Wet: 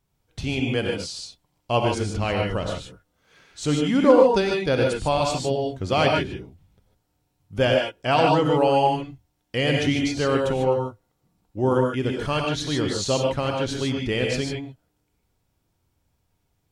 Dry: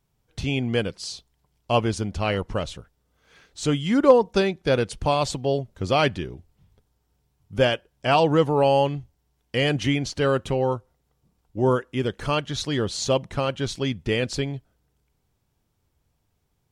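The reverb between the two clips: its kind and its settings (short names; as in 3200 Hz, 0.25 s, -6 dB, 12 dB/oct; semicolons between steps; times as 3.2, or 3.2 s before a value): non-linear reverb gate 0.17 s rising, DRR 0.5 dB; gain -1.5 dB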